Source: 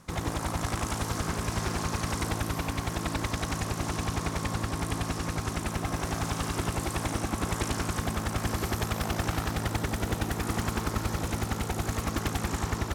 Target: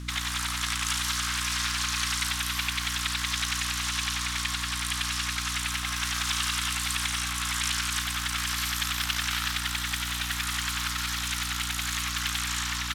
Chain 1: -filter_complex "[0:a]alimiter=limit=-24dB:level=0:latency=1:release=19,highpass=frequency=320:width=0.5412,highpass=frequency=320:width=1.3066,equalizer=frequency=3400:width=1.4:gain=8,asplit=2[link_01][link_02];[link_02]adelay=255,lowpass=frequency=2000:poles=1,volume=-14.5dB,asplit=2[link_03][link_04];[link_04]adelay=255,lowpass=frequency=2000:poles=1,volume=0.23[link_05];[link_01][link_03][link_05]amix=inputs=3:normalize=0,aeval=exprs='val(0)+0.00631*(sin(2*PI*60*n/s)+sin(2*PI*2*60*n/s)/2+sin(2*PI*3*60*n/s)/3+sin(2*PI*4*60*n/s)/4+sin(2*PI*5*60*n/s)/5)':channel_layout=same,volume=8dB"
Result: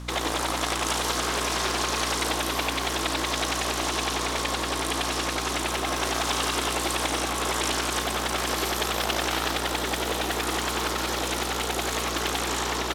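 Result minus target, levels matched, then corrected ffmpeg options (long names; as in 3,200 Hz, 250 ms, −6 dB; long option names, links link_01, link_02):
250 Hz band +7.0 dB
-filter_complex "[0:a]alimiter=limit=-24dB:level=0:latency=1:release=19,highpass=frequency=1300:width=0.5412,highpass=frequency=1300:width=1.3066,equalizer=frequency=3400:width=1.4:gain=8,asplit=2[link_01][link_02];[link_02]adelay=255,lowpass=frequency=2000:poles=1,volume=-14.5dB,asplit=2[link_03][link_04];[link_04]adelay=255,lowpass=frequency=2000:poles=1,volume=0.23[link_05];[link_01][link_03][link_05]amix=inputs=3:normalize=0,aeval=exprs='val(0)+0.00631*(sin(2*PI*60*n/s)+sin(2*PI*2*60*n/s)/2+sin(2*PI*3*60*n/s)/3+sin(2*PI*4*60*n/s)/4+sin(2*PI*5*60*n/s)/5)':channel_layout=same,volume=8dB"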